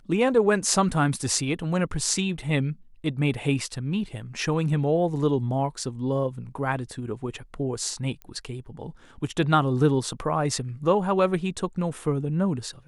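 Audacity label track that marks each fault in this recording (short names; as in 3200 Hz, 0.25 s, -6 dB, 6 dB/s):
8.220000	8.220000	pop -25 dBFS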